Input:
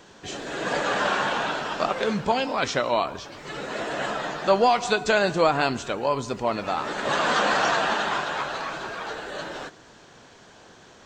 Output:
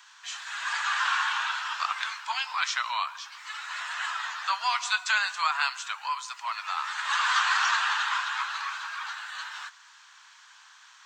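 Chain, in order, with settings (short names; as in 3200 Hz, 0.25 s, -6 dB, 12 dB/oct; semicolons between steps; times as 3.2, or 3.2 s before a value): steep high-pass 980 Hz 48 dB/oct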